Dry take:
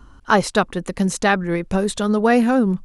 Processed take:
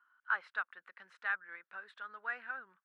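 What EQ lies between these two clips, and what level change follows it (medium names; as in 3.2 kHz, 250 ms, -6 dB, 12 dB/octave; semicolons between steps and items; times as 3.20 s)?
band-pass filter 1.5 kHz, Q 4.5; distance through air 420 m; differentiator; +6.5 dB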